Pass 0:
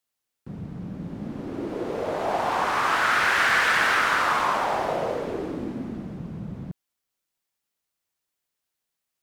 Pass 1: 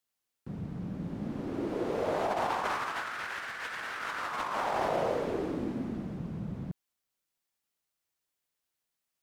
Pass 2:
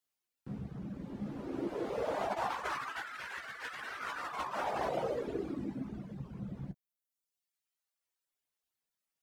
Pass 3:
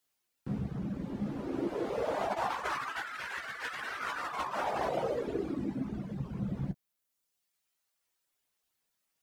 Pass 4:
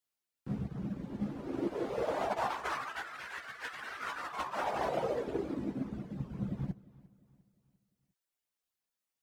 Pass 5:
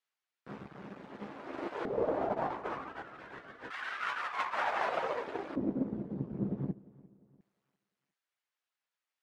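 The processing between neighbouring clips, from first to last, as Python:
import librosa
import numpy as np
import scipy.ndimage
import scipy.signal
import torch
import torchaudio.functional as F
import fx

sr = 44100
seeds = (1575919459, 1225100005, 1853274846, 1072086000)

y1 = fx.over_compress(x, sr, threshold_db=-26.0, ratio=-0.5)
y1 = y1 * 10.0 ** (-5.5 / 20.0)
y2 = fx.room_early_taps(y1, sr, ms=(15, 29), db=(-4.0, -12.5))
y2 = fx.dereverb_blind(y2, sr, rt60_s=1.4)
y2 = y2 * 10.0 ** (-3.5 / 20.0)
y3 = fx.rider(y2, sr, range_db=10, speed_s=2.0)
y3 = y3 * 10.0 ** (3.0 / 20.0)
y4 = fx.echo_feedback(y3, sr, ms=350, feedback_pct=44, wet_db=-14.5)
y4 = fx.upward_expand(y4, sr, threshold_db=-48.0, expansion=1.5)
y5 = np.where(y4 < 0.0, 10.0 ** (-12.0 / 20.0) * y4, y4)
y5 = fx.filter_lfo_bandpass(y5, sr, shape='square', hz=0.27, low_hz=320.0, high_hz=1600.0, q=0.76)
y5 = y5 * 10.0 ** (8.5 / 20.0)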